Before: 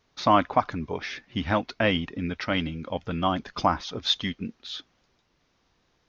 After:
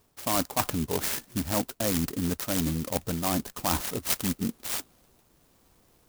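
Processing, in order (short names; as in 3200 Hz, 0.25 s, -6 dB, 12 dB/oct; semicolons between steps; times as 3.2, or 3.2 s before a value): LPF 4900 Hz 24 dB/oct; reverse; compressor 5:1, threshold -32 dBFS, peak gain reduction 15.5 dB; reverse; clock jitter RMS 0.15 ms; gain +7 dB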